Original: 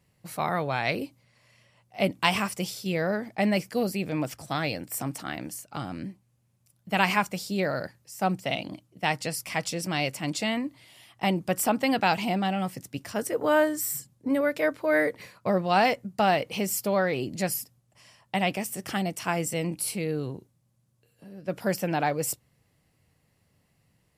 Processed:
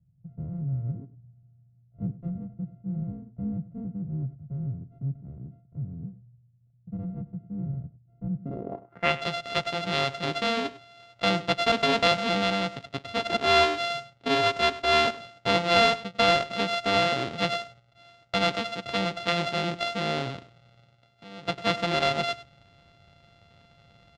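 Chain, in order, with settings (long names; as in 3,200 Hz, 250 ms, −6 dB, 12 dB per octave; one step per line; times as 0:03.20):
samples sorted by size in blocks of 64 samples
reversed playback
upward compression, threshold −47 dBFS
reversed playback
low-pass filter sweep 140 Hz → 3,700 Hz, 0:08.33–0:09.17
single-tap delay 100 ms −17 dB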